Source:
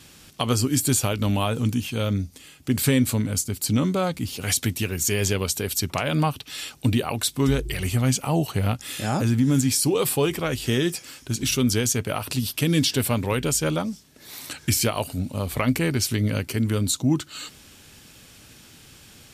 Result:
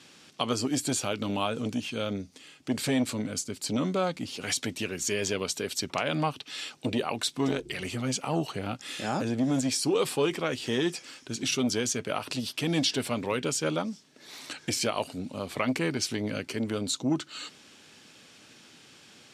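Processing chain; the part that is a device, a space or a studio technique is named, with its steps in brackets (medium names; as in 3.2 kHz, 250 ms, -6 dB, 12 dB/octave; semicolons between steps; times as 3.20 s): public-address speaker with an overloaded transformer (transformer saturation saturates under 310 Hz; band-pass 210–6500 Hz); trim -2.5 dB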